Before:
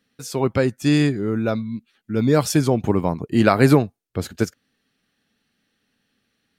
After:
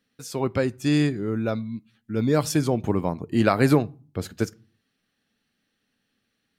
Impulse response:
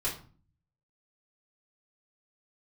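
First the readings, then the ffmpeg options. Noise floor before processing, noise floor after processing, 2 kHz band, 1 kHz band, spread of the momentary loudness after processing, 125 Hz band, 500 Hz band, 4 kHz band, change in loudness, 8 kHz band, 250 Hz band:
-73 dBFS, -76 dBFS, -4.5 dB, -4.0 dB, 14 LU, -4.5 dB, -4.5 dB, -4.0 dB, -4.0 dB, -4.0 dB, -4.0 dB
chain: -filter_complex "[0:a]asplit=2[s0][s1];[1:a]atrim=start_sample=2205,afade=t=out:st=0.42:d=0.01,atrim=end_sample=18963[s2];[s1][s2]afir=irnorm=-1:irlink=0,volume=0.0596[s3];[s0][s3]amix=inputs=2:normalize=0,volume=0.596"

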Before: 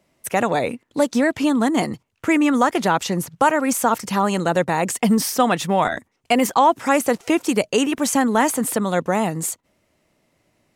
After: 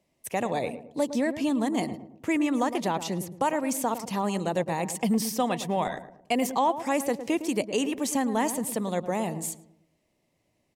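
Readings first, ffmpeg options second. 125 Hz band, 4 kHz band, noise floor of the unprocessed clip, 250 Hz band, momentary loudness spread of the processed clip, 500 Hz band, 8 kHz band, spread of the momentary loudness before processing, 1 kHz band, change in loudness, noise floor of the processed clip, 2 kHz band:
-7.5 dB, -8.5 dB, -69 dBFS, -7.5 dB, 6 LU, -8.0 dB, -8.0 dB, 6 LU, -9.5 dB, -8.5 dB, -73 dBFS, -11.0 dB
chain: -filter_complex "[0:a]equalizer=f=1400:t=o:w=0.45:g=-10.5,asplit=2[s0][s1];[s1]adelay=110,lowpass=f=990:p=1,volume=0.316,asplit=2[s2][s3];[s3]adelay=110,lowpass=f=990:p=1,volume=0.45,asplit=2[s4][s5];[s5]adelay=110,lowpass=f=990:p=1,volume=0.45,asplit=2[s6][s7];[s7]adelay=110,lowpass=f=990:p=1,volume=0.45,asplit=2[s8][s9];[s9]adelay=110,lowpass=f=990:p=1,volume=0.45[s10];[s0][s2][s4][s6][s8][s10]amix=inputs=6:normalize=0,volume=0.398"

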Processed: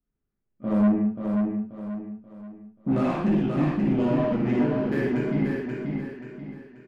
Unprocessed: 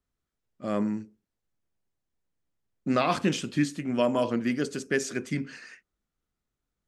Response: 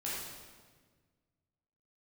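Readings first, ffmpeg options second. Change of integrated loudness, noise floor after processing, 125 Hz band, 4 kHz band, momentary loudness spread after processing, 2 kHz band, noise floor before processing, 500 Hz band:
+3.0 dB, -80 dBFS, +8.0 dB, no reading, 17 LU, -2.5 dB, under -85 dBFS, +2.0 dB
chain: -filter_complex "[0:a]acompressor=threshold=0.0251:ratio=2,lowpass=f=2900:w=0.5412,lowpass=f=2900:w=1.3066,equalizer=f=210:t=o:w=0.91:g=4.5,bandreject=f=59.47:t=h:w=4,bandreject=f=118.94:t=h:w=4,bandreject=f=178.41:t=h:w=4,bandreject=f=237.88:t=h:w=4,bandreject=f=297.35:t=h:w=4,bandreject=f=356.82:t=h:w=4,bandreject=f=416.29:t=h:w=4,bandreject=f=475.76:t=h:w=4,bandreject=f=535.23:t=h:w=4,bandreject=f=594.7:t=h:w=4,bandreject=f=654.17:t=h:w=4,bandreject=f=713.64:t=h:w=4,bandreject=f=773.11:t=h:w=4,bandreject=f=832.58:t=h:w=4,bandreject=f=892.05:t=h:w=4,bandreject=f=951.52:t=h:w=4,bandreject=f=1010.99:t=h:w=4,aeval=exprs='0.112*(cos(1*acos(clip(val(0)/0.112,-1,1)))-cos(1*PI/2))+0.00891*(cos(7*acos(clip(val(0)/0.112,-1,1)))-cos(7*PI/2))':c=same,tiltshelf=f=740:g=5.5[s0];[1:a]atrim=start_sample=2205,afade=t=out:st=0.2:d=0.01,atrim=end_sample=9261[s1];[s0][s1]afir=irnorm=-1:irlink=0,asoftclip=type=tanh:threshold=0.1,aecho=1:1:533|1066|1599|2132|2665:0.596|0.226|0.086|0.0327|0.0124,volume=1.58"

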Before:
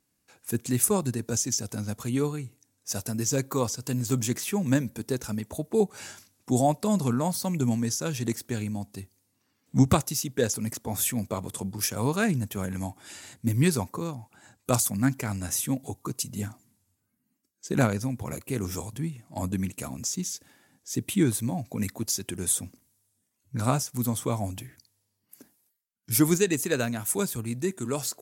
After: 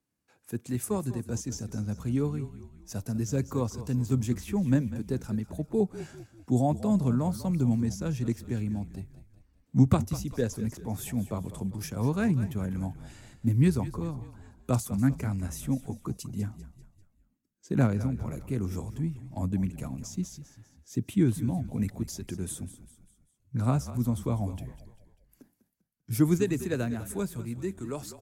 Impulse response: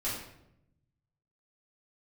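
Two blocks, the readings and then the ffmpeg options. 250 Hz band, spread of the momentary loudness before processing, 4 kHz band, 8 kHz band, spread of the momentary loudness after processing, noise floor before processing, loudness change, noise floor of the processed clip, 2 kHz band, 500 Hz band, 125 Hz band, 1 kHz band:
-0.5 dB, 12 LU, -11.5 dB, -13.0 dB, 12 LU, -76 dBFS, -2.0 dB, -71 dBFS, -8.0 dB, -4.0 dB, +1.0 dB, -6.0 dB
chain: -filter_complex "[0:a]highshelf=f=2800:g=-8.5,acrossover=split=290|550|5600[s0][s1][s2][s3];[s0]dynaudnorm=f=230:g=11:m=2.24[s4];[s4][s1][s2][s3]amix=inputs=4:normalize=0,asplit=5[s5][s6][s7][s8][s9];[s6]adelay=197,afreqshift=-36,volume=0.2[s10];[s7]adelay=394,afreqshift=-72,volume=0.0902[s11];[s8]adelay=591,afreqshift=-108,volume=0.0403[s12];[s9]adelay=788,afreqshift=-144,volume=0.0182[s13];[s5][s10][s11][s12][s13]amix=inputs=5:normalize=0,volume=0.531"

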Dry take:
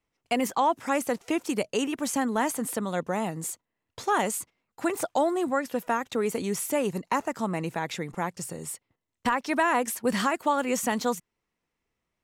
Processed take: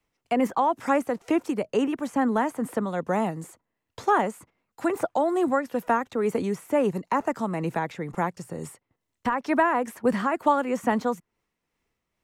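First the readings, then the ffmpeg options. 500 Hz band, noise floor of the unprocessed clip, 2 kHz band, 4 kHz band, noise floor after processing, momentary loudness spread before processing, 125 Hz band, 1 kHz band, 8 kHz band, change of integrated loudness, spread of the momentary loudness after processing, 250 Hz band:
+2.5 dB, -84 dBFS, -0.5 dB, -7.0 dB, -82 dBFS, 9 LU, +2.5 dB, +2.0 dB, -11.5 dB, +2.0 dB, 8 LU, +3.0 dB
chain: -filter_complex "[0:a]acrossover=split=300|480|2000[s0][s1][s2][s3];[s3]acompressor=threshold=0.00316:ratio=5[s4];[s0][s1][s2][s4]amix=inputs=4:normalize=0,tremolo=f=2.2:d=0.39,volume=1.68"

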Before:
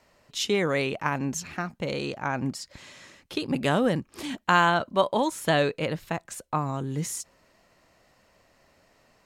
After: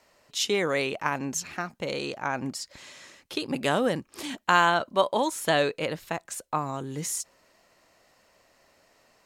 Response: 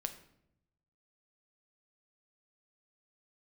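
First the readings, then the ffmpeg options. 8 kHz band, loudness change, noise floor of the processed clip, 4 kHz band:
+3.0 dB, -0.5 dB, -65 dBFS, +1.0 dB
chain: -af "bass=f=250:g=-7,treble=f=4000:g=3"

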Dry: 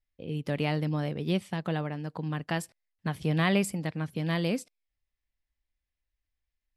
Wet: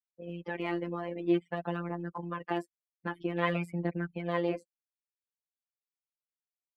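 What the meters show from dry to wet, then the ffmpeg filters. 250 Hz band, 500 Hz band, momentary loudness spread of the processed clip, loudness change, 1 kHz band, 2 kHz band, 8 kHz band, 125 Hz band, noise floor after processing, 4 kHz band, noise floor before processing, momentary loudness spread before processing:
-3.5 dB, -0.5 dB, 10 LU, -3.5 dB, -0.5 dB, -3.5 dB, under -20 dB, -8.5 dB, under -85 dBFS, -9.5 dB, under -85 dBFS, 10 LU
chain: -filter_complex "[0:a]afftfilt=real='re*gte(hypot(re,im),0.00501)':imag='im*gte(hypot(re,im),0.00501)':win_size=1024:overlap=0.75,acrossover=split=210 2600:gain=0.0794 1 0.0794[s0][s1][s2];[s0][s1][s2]amix=inputs=3:normalize=0,aphaser=in_gain=1:out_gain=1:delay=4.3:decay=0.58:speed=0.51:type=triangular,asplit=2[s3][s4];[s4]acompressor=threshold=0.00891:ratio=6,volume=0.75[s5];[s3][s5]amix=inputs=2:normalize=0,afftfilt=real='hypot(re,im)*cos(PI*b)':imag='0':win_size=1024:overlap=0.75,adynamicequalizer=threshold=0.00447:dfrequency=1600:dqfactor=0.7:tfrequency=1600:tqfactor=0.7:attack=5:release=100:ratio=0.375:range=2:mode=cutabove:tftype=highshelf,volume=1.19"

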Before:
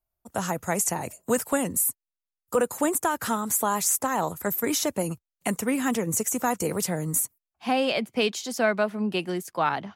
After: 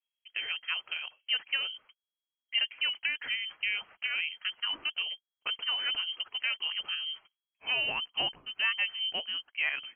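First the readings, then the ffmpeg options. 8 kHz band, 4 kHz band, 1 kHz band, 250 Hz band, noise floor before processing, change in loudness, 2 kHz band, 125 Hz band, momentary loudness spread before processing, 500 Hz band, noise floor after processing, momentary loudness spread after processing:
under -40 dB, +7.5 dB, -17.5 dB, -31.5 dB, under -85 dBFS, -5.0 dB, +1.0 dB, under -25 dB, 7 LU, -24.5 dB, under -85 dBFS, 8 LU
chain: -af "lowpass=f=2800:t=q:w=0.5098,lowpass=f=2800:t=q:w=0.6013,lowpass=f=2800:t=q:w=0.9,lowpass=f=2800:t=q:w=2.563,afreqshift=-3300,volume=0.473"

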